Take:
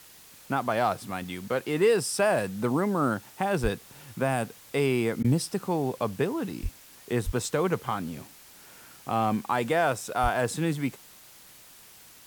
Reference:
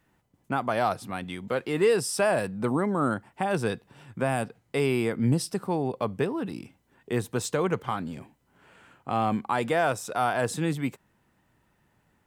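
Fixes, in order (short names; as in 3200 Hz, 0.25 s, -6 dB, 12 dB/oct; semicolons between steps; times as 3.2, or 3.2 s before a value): de-plosive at 3.62/6.62/7.25/10.22; interpolate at 5.23, 13 ms; noise print and reduce 17 dB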